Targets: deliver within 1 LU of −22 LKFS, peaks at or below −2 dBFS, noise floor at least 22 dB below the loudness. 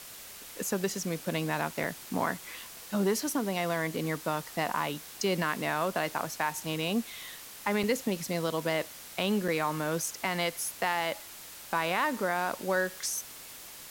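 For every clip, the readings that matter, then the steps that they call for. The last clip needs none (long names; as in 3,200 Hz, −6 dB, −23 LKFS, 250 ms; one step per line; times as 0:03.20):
number of dropouts 3; longest dropout 4.0 ms; background noise floor −47 dBFS; target noise floor −54 dBFS; integrated loudness −31.5 LKFS; sample peak −15.5 dBFS; target loudness −22.0 LKFS
→ repair the gap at 0:01.84/0:07.83/0:09.48, 4 ms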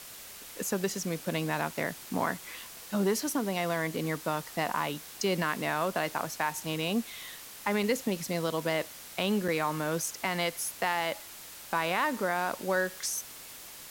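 number of dropouts 0; background noise floor −47 dBFS; target noise floor −54 dBFS
→ broadband denoise 7 dB, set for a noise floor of −47 dBFS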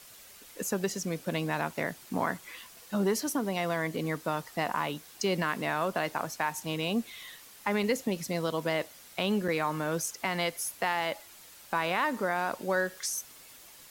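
background noise floor −52 dBFS; target noise floor −54 dBFS
→ broadband denoise 6 dB, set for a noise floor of −52 dBFS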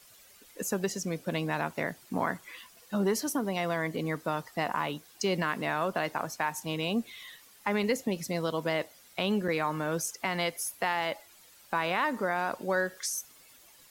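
background noise floor −57 dBFS; integrated loudness −31.5 LKFS; sample peak −15.5 dBFS; target loudness −22.0 LKFS
→ level +9.5 dB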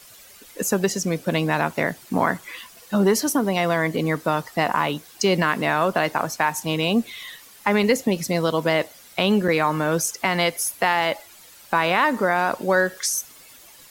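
integrated loudness −22.0 LKFS; sample peak −6.0 dBFS; background noise floor −48 dBFS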